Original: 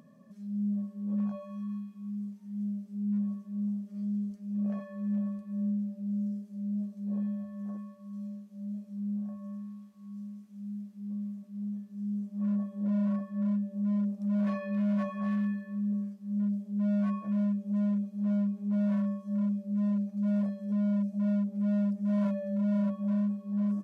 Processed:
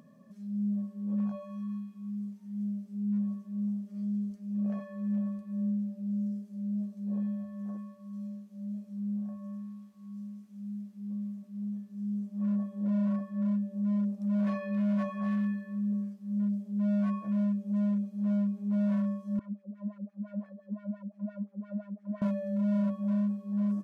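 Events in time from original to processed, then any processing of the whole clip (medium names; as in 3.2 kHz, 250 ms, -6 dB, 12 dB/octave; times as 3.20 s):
19.39–22.22 s: LFO band-pass sine 5.8 Hz 250–2000 Hz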